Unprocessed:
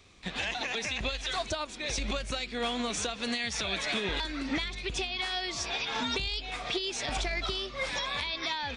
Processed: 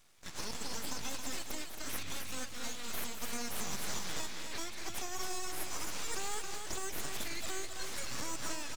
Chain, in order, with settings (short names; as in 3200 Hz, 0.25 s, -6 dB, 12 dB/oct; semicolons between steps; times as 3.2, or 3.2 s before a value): passive tone stack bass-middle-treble 5-5-5; full-wave rectifier; tapped delay 0.201/0.271 s -11/-6.5 dB; gain +4.5 dB